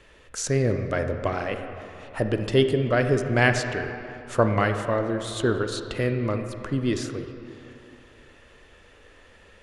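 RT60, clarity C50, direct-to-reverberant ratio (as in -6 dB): 2.7 s, 7.0 dB, 6.5 dB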